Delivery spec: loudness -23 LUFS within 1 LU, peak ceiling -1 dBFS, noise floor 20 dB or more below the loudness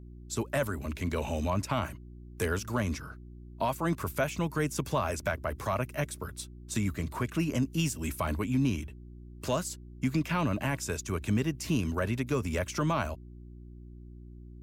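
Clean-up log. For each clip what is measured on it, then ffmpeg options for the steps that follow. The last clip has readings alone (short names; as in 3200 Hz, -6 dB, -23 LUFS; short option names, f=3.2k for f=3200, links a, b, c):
hum 60 Hz; harmonics up to 360 Hz; hum level -46 dBFS; loudness -32.0 LUFS; peak -18.0 dBFS; loudness target -23.0 LUFS
-> -af "bandreject=f=60:t=h:w=4,bandreject=f=120:t=h:w=4,bandreject=f=180:t=h:w=4,bandreject=f=240:t=h:w=4,bandreject=f=300:t=h:w=4,bandreject=f=360:t=h:w=4"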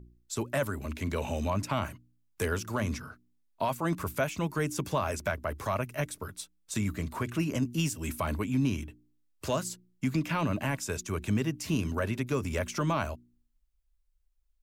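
hum none; loudness -32.5 LUFS; peak -17.5 dBFS; loudness target -23.0 LUFS
-> -af "volume=9.5dB"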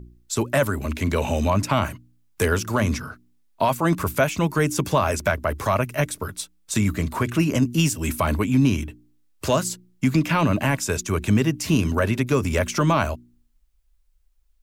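loudness -23.0 LUFS; peak -8.0 dBFS; noise floor -62 dBFS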